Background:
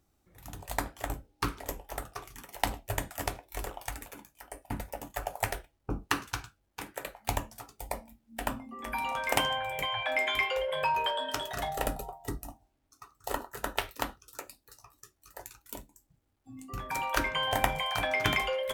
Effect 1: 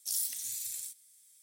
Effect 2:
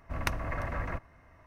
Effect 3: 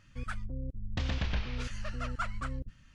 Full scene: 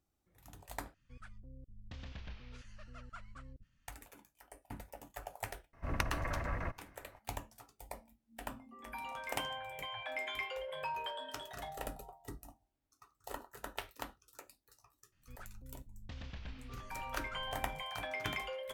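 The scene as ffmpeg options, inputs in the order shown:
ffmpeg -i bed.wav -i cue0.wav -i cue1.wav -i cue2.wav -filter_complex "[3:a]asplit=2[link_01][link_02];[0:a]volume=-11dB,asplit=2[link_03][link_04];[link_03]atrim=end=0.944[link_05];[link_01]atrim=end=2.94,asetpts=PTS-STARTPTS,volume=-15.5dB[link_06];[link_04]atrim=start=3.876[link_07];[2:a]atrim=end=1.46,asetpts=PTS-STARTPTS,volume=-3.5dB,afade=type=in:duration=0.004:curve=hsin,afade=type=out:start_time=1.456:duration=0.004:curve=hsin,adelay=252693S[link_08];[link_02]atrim=end=2.94,asetpts=PTS-STARTPTS,volume=-14.5dB,afade=type=in:duration=0.004:curve=hsin,afade=type=out:start_time=2.936:duration=0.004:curve=hsin,adelay=15120[link_09];[link_05][link_06]acrossfade=duration=0.004:curve1=hsin:curve2=hsin[link_10];[link_10][link_07]acrossfade=duration=0.004:curve1=hsin:curve2=hsin[link_11];[link_11][link_08][link_09]amix=inputs=3:normalize=0" out.wav

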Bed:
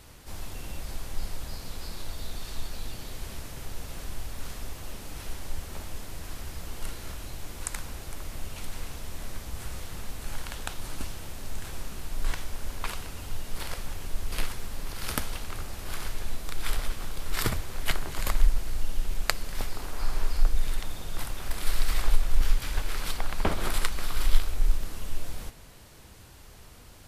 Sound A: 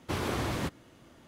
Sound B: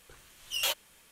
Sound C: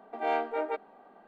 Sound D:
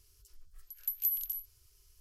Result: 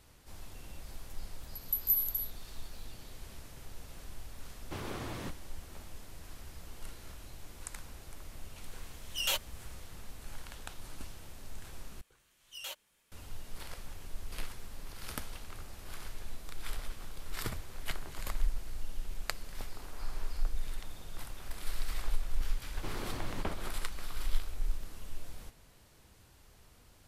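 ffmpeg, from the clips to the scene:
ffmpeg -i bed.wav -i cue0.wav -i cue1.wav -i cue2.wav -i cue3.wav -filter_complex "[1:a]asplit=2[link_01][link_02];[2:a]asplit=2[link_03][link_04];[0:a]volume=-10dB[link_05];[4:a]aderivative[link_06];[link_05]asplit=2[link_07][link_08];[link_07]atrim=end=12.014[link_09];[link_04]atrim=end=1.11,asetpts=PTS-STARTPTS,volume=-13dB[link_10];[link_08]atrim=start=13.116[link_11];[link_06]atrim=end=2,asetpts=PTS-STARTPTS,volume=-1dB,afade=type=in:duration=0.004:curve=hsin,afade=type=out:start_time=1.996:duration=0.004:curve=hsin,adelay=850[link_12];[link_01]atrim=end=1.27,asetpts=PTS-STARTPTS,volume=-9dB,afade=type=in:duration=0.004:curve=hsin,afade=type=out:start_time=1.266:duration=0.004:curve=hsin,adelay=4620[link_13];[link_03]atrim=end=1.11,asetpts=PTS-STARTPTS,volume=-2dB,afade=type=in:duration=0.004:curve=hsin,afade=type=out:start_time=1.106:duration=0.004:curve=hsin,adelay=8640[link_14];[link_02]atrim=end=1.27,asetpts=PTS-STARTPTS,volume=-10dB,afade=type=in:duration=0.004:curve=hsin,afade=type=out:start_time=1.266:duration=0.004:curve=hsin,adelay=22740[link_15];[link_09][link_10]acrossfade=duration=0.004:curve1=hsin:curve2=hsin[link_16];[link_16][link_11]acrossfade=duration=0.004:curve1=hsin:curve2=hsin[link_17];[link_17][link_12][link_13][link_14][link_15]amix=inputs=5:normalize=0" out.wav

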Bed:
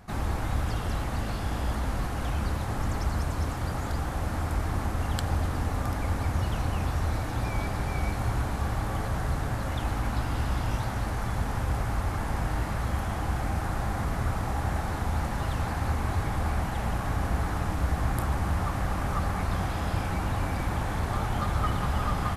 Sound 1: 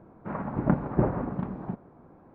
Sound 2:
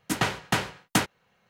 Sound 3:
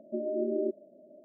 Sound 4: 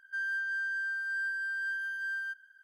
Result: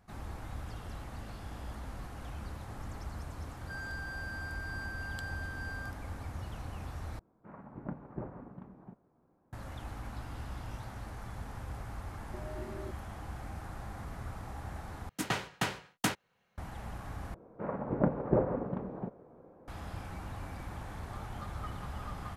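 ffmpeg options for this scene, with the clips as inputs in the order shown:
ffmpeg -i bed.wav -i cue0.wav -i cue1.wav -i cue2.wav -i cue3.wav -filter_complex "[1:a]asplit=2[link_01][link_02];[0:a]volume=-13.5dB[link_03];[4:a]asoftclip=type=tanh:threshold=-35dB[link_04];[link_02]equalizer=frequency=500:width_type=o:width=0.71:gain=10.5[link_05];[link_03]asplit=4[link_06][link_07][link_08][link_09];[link_06]atrim=end=7.194[link_10];[link_01]atrim=end=2.34,asetpts=PTS-STARTPTS,volume=-17dB[link_11];[link_07]atrim=start=9.526:end=15.094[link_12];[2:a]atrim=end=1.49,asetpts=PTS-STARTPTS,volume=-7.5dB[link_13];[link_08]atrim=start=16.576:end=17.344[link_14];[link_05]atrim=end=2.34,asetpts=PTS-STARTPTS,volume=-6.5dB[link_15];[link_09]atrim=start=19.676[link_16];[link_04]atrim=end=2.63,asetpts=PTS-STARTPTS,volume=-5.5dB,afade=type=in:duration=0.004:curve=hsin,afade=type=out:start_time=2.626:duration=0.004:curve=hsin,adelay=157437S[link_17];[3:a]atrim=end=1.24,asetpts=PTS-STARTPTS,volume=-14.5dB,afade=type=in:duration=0.004:curve=hsin,afade=type=out:start_time=1.236:duration=0.004:curve=hsin,adelay=538020S[link_18];[link_10][link_11]acrossfade=duration=0.004:curve1=hsin:curve2=hsin[link_19];[link_19][link_12]acrossfade=duration=0.004:curve1=hsin:curve2=hsin[link_20];[link_20][link_13]acrossfade=duration=0.004:curve1=hsin:curve2=hsin[link_21];[link_21][link_14]acrossfade=duration=0.004:curve1=hsin:curve2=hsin[link_22];[link_22][link_15]acrossfade=duration=0.004:curve1=hsin:curve2=hsin[link_23];[link_23][link_16]acrossfade=duration=0.004:curve1=hsin:curve2=hsin[link_24];[link_24][link_17][link_18]amix=inputs=3:normalize=0" out.wav

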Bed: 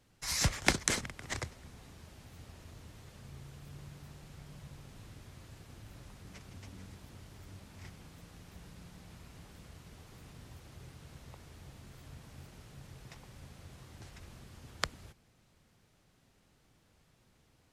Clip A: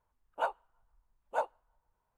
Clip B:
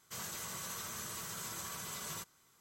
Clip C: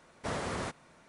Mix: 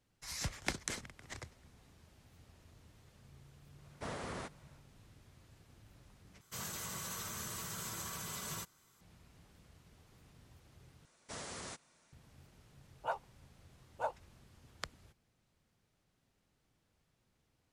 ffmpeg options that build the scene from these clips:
ffmpeg -i bed.wav -i cue0.wav -i cue1.wav -i cue2.wav -filter_complex "[3:a]asplit=2[link_01][link_02];[0:a]volume=-9.5dB[link_03];[2:a]lowshelf=frequency=180:gain=6.5[link_04];[link_02]equalizer=frequency=7100:width=0.51:gain=14[link_05];[link_03]asplit=3[link_06][link_07][link_08];[link_06]atrim=end=6.414[link_09];[link_04]atrim=end=2.6,asetpts=PTS-STARTPTS,volume=-0.5dB[link_10];[link_07]atrim=start=9.006:end=11.054[link_11];[link_05]atrim=end=1.08,asetpts=PTS-STARTPTS,volume=-13.5dB[link_12];[link_08]atrim=start=12.126[link_13];[link_01]atrim=end=1.08,asetpts=PTS-STARTPTS,volume=-7.5dB,afade=type=in:duration=0.1,afade=type=out:start_time=0.98:duration=0.1,adelay=166257S[link_14];[1:a]atrim=end=2.17,asetpts=PTS-STARTPTS,volume=-5.5dB,afade=type=in:duration=0.004:curve=hsin,afade=type=out:start_time=2.166:duration=0.004:curve=hsin,adelay=12660[link_15];[link_09][link_10]acrossfade=duration=0.004:curve1=hsin:curve2=hsin[link_16];[link_16][link_11]acrossfade=duration=0.004:curve1=hsin:curve2=hsin[link_17];[link_17][link_12]acrossfade=duration=0.004:curve1=hsin:curve2=hsin[link_18];[link_18][link_13]acrossfade=duration=0.004:curve1=hsin:curve2=hsin[link_19];[link_19][link_14][link_15]amix=inputs=3:normalize=0" out.wav

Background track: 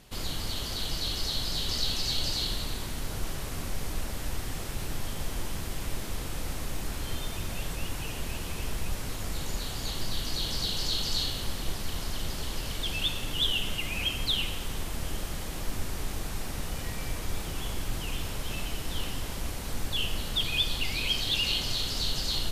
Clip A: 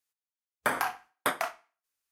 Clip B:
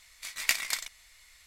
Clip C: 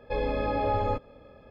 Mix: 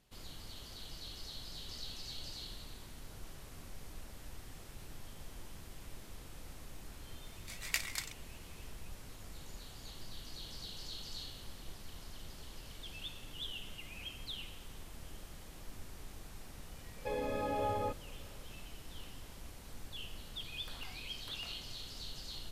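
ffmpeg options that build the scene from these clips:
ffmpeg -i bed.wav -i cue0.wav -i cue1.wav -i cue2.wav -filter_complex "[0:a]volume=-16dB[link_01];[3:a]highpass=90[link_02];[1:a]acompressor=threshold=-35dB:ratio=6:attack=3.2:release=140:knee=1:detection=peak[link_03];[2:a]atrim=end=1.46,asetpts=PTS-STARTPTS,volume=-8.5dB,afade=type=in:duration=0.004:curve=hsin,afade=type=out:start_time=1.456:duration=0.004:curve=hsin,adelay=7250[link_04];[link_02]atrim=end=1.5,asetpts=PTS-STARTPTS,volume=-8dB,afade=type=in:duration=0.004:curve=hsin,afade=type=out:start_time=1.496:duration=0.004:curve=hsin,adelay=16950[link_05];[link_03]atrim=end=2.11,asetpts=PTS-STARTPTS,volume=-17dB,afade=type=in:duration=0.004:curve=hsin,afade=type=out:start_time=2.106:duration=0.004:curve=hsin,adelay=20020[link_06];[link_01][link_04][link_05][link_06]amix=inputs=4:normalize=0" out.wav

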